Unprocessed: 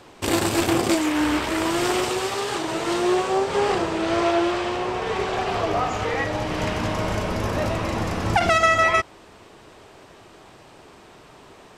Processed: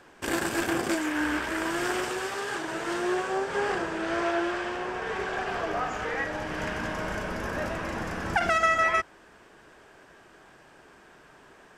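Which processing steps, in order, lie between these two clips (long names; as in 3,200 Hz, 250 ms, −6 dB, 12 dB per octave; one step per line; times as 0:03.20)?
thirty-one-band graphic EQ 100 Hz −11 dB, 1,600 Hz +11 dB, 4,000 Hz −5 dB
level −7.5 dB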